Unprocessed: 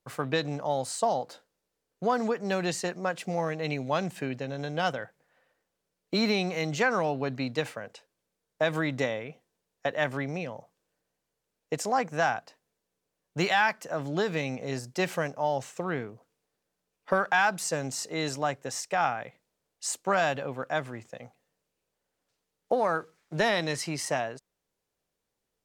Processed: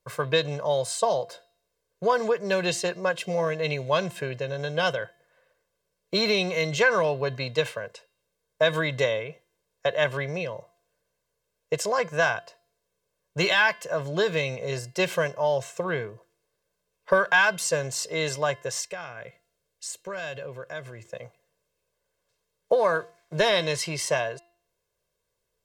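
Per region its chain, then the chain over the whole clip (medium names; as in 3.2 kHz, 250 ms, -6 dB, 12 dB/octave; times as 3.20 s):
18.87–21.07 s: peaking EQ 920 Hz -6 dB 1.1 oct + compression 2:1, threshold -41 dBFS
whole clip: comb 1.9 ms, depth 77%; de-hum 344.6 Hz, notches 15; dynamic bell 3.3 kHz, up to +6 dB, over -48 dBFS, Q 2.3; trim +1.5 dB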